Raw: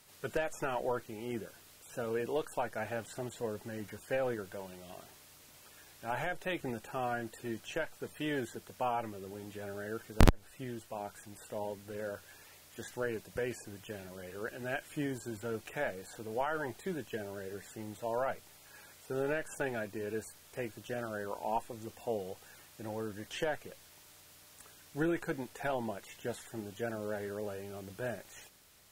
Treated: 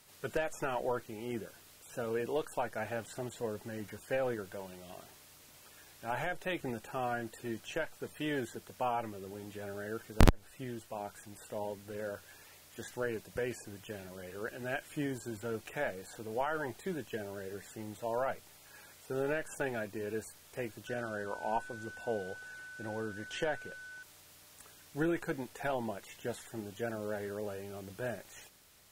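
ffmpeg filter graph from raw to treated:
ffmpeg -i in.wav -filter_complex "[0:a]asettb=1/sr,asplit=3[link_01][link_02][link_03];[link_01]atrim=end=20.874[link_04];[link_02]atrim=start=20.87:end=24.03,asetpts=PTS-STARTPTS,afade=type=in:duration=0.004:curve=qsin,afade=type=out:start_time=3.156:duration=0.004:curve=qsin,lowpass=10000,aeval=exprs='val(0)+0.00501*sin(2*PI*1500*n/s)':channel_layout=same[link_05];[link_03]atrim=start=24.026[link_06];[link_04][link_05]acrossfade=duration=0.004:curve1=hsin:curve2=qsin[link_07];[link_07][link_06]acrossfade=duration=0.004:curve1=qsin:curve2=hsin" out.wav

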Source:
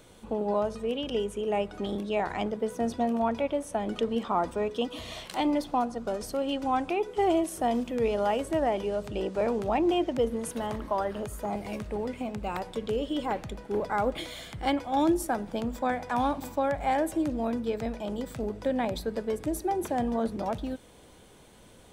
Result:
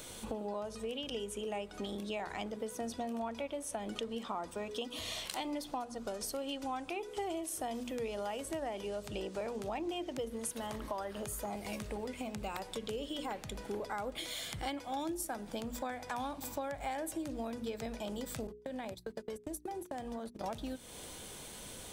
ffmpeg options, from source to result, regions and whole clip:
ffmpeg -i in.wav -filter_complex "[0:a]asettb=1/sr,asplit=3[link_01][link_02][link_03];[link_01]atrim=end=18.474[link_04];[link_02]atrim=start=18.47:end=20.44,asetpts=PTS-STARTPTS,afade=type=in:duration=0.004:curve=qsin,afade=type=out:start_time=1.966:duration=0.004:curve=qsin,agate=range=-41dB:threshold=-32dB:ratio=16:release=100:detection=peak,acompressor=threshold=-36dB:ratio=6:attack=3.2:release=140:knee=1:detection=peak[link_05];[link_03]atrim=start=20.436[link_06];[link_04][link_05]acrossfade=duration=0.004:curve1=hsin:curve2=qsin[link_07];[link_07][link_06]acrossfade=duration=0.004:curve1=qsin:curve2=hsin,highshelf=frequency=2900:gain=11,bandreject=frequency=60:width_type=h:width=6,bandreject=frequency=120:width_type=h:width=6,bandreject=frequency=180:width_type=h:width=6,bandreject=frequency=240:width_type=h:width=6,bandreject=frequency=300:width_type=h:width=6,bandreject=frequency=360:width_type=h:width=6,bandreject=frequency=420:width_type=h:width=6,acompressor=threshold=-42dB:ratio=4,volume=3dB" out.wav

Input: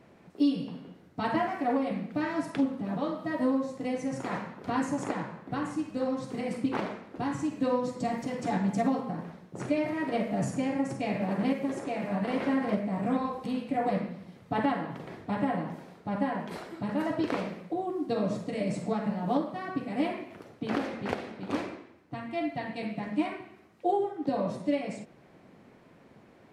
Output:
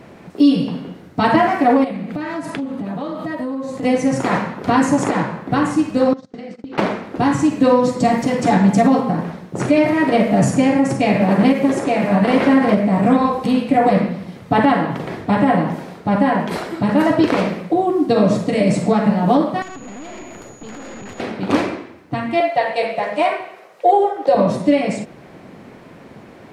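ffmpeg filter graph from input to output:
ffmpeg -i in.wav -filter_complex "[0:a]asettb=1/sr,asplit=3[link_01][link_02][link_03];[link_01]atrim=end=1.844[link_04];[link_02]atrim=start=1.84:end=3.83,asetpts=PTS-STARTPTS,afade=type=in:duration=0.004:curve=qsin,afade=type=out:start_time=1.986:duration=0.004:curve=qsin,bandreject=frequency=5500:width=13,acompressor=threshold=-38dB:ratio=5:attack=3.2:release=140:knee=1:detection=peak[link_05];[link_03]atrim=start=3.826[link_06];[link_04][link_05]acrossfade=duration=0.004:curve1=hsin:curve2=qsin[link_07];[link_07][link_06]acrossfade=duration=0.004:curve1=qsin:curve2=hsin,asettb=1/sr,asplit=3[link_08][link_09][link_10];[link_08]atrim=end=6.134[link_11];[link_09]atrim=start=6.13:end=6.78,asetpts=PTS-STARTPTS,afade=type=in:duration=0.004:curve=qsin,afade=type=out:start_time=0.646:duration=0.004:curve=qsin,agate=range=-32dB:threshold=-35dB:ratio=16:release=100:detection=peak,highpass=110,equalizer=frequency=130:width_type=q:width=4:gain=-7,equalizer=frequency=970:width_type=q:width=4:gain=-8,equalizer=frequency=2400:width_type=q:width=4:gain=-4,lowpass=frequency=6200:width=0.5412,lowpass=frequency=6200:width=1.3066,acompressor=threshold=-44dB:ratio=12:attack=3.2:release=140:knee=1:detection=peak[link_12];[link_10]atrim=start=6.776[link_13];[link_11][link_12]acrossfade=duration=0.004:curve1=hsin:curve2=qsin[link_14];[link_14][link_13]acrossfade=duration=0.004:curve1=qsin:curve2=hsin,asettb=1/sr,asplit=3[link_15][link_16][link_17];[link_15]atrim=end=19.624[link_18];[link_16]atrim=start=19.62:end=21.2,asetpts=PTS-STARTPTS,afade=type=in:duration=0.004:curve=qsin,afade=type=out:start_time=1.576:duration=0.004:curve=qsin,acompressor=threshold=-38dB:ratio=8:attack=3.2:release=140:knee=1:detection=peak,aeval=exprs='(tanh(224*val(0)+0.6)-tanh(0.6))/224':channel_layout=same,aeval=exprs='val(0)+0.000891*sin(2*PI*6800*n/s)':channel_layout=same[link_19];[link_17]atrim=start=21.196[link_20];[link_18][link_19]acrossfade=duration=0.004:curve1=hsin:curve2=qsin[link_21];[link_21][link_20]acrossfade=duration=0.004:curve1=qsin:curve2=hsin,asettb=1/sr,asplit=3[link_22][link_23][link_24];[link_22]atrim=end=22.404[link_25];[link_23]atrim=start=22.4:end=24.35,asetpts=PTS-STARTPTS,afade=type=in:duration=0.004:curve=qsin,afade=type=out:start_time=1.946:duration=0.004:curve=qsin,highpass=frequency=130:width=0.5412,highpass=frequency=130:width=1.3066,lowshelf=frequency=370:width_type=q:width=3:gain=-11.5[link_26];[link_24]atrim=start=24.346[link_27];[link_25][link_26]acrossfade=duration=0.004:curve1=hsin:curve2=qsin[link_28];[link_28][link_27]acrossfade=duration=0.004:curve1=qsin:curve2=hsin,acontrast=82,alimiter=level_in=12dB:limit=-1dB:release=50:level=0:latency=1,volume=-3.5dB" out.wav

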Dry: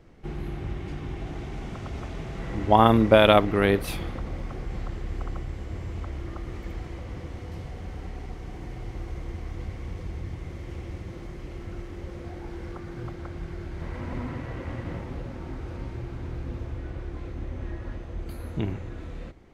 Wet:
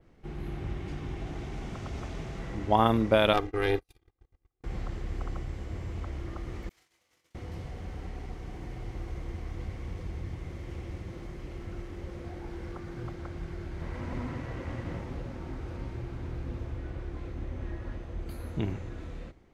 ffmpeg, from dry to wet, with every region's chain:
ffmpeg -i in.wav -filter_complex "[0:a]asettb=1/sr,asplit=3[link_01][link_02][link_03];[link_01]atrim=end=3.334[link_04];[link_02]atrim=start=3.33:end=4.64,asetpts=PTS-STARTPTS,afade=type=in:duration=0.004:curve=qsin,afade=type=out:start_time=1.306:duration=0.004:curve=qsin,agate=range=-48dB:threshold=-27dB:ratio=16:release=100:detection=peak,aecho=1:1:2.5:0.76,atrim=end_sample=57771,aeval=exprs='(tanh(2.82*val(0)+0.75)-tanh(0.75))/2.82':channel_layout=same[link_05];[link_03]atrim=start=4.636[link_06];[link_04][link_05]acrossfade=duration=0.004:curve1=hsin:curve2=qsin[link_07];[link_07][link_06]acrossfade=duration=0.004:curve1=qsin:curve2=hsin,asettb=1/sr,asplit=3[link_08][link_09][link_10];[link_08]atrim=end=6.694[link_11];[link_09]atrim=start=6.69:end=7.35,asetpts=PTS-STARTPTS,afade=type=in:duration=0.004:curve=qsin,afade=type=out:start_time=0.656:duration=0.004:curve=qsin,agate=range=-33dB:threshold=-29dB:ratio=3:release=100:detection=peak,aderivative,asplit=2[link_12][link_13];[link_13]adelay=24,volume=-7.5dB[link_14];[link_12][link_14]amix=inputs=2:normalize=0,atrim=end_sample=29106[link_15];[link_10]atrim=start=7.346[link_16];[link_11][link_15]acrossfade=duration=0.004:curve1=hsin:curve2=qsin[link_17];[link_17][link_16]acrossfade=duration=0.004:curve1=qsin:curve2=hsin,dynaudnorm=framelen=110:gausssize=7:maxgain=4dB,adynamicequalizer=threshold=0.00224:dfrequency=6200:dqfactor=1.2:tfrequency=6200:tqfactor=1.2:attack=5:release=100:ratio=0.375:range=2:mode=boostabove:tftype=bell,volume=-6.5dB" out.wav

